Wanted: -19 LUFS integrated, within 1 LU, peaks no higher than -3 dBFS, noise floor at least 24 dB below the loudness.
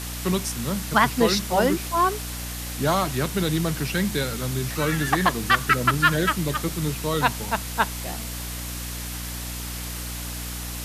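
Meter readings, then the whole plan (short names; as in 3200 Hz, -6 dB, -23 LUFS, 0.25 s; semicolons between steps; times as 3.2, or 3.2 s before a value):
hum 60 Hz; harmonics up to 300 Hz; hum level -32 dBFS; noise floor -32 dBFS; noise floor target -49 dBFS; loudness -24.5 LUFS; peak -5.0 dBFS; loudness target -19.0 LUFS
-> de-hum 60 Hz, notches 5; denoiser 17 dB, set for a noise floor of -32 dBFS; gain +5.5 dB; limiter -3 dBFS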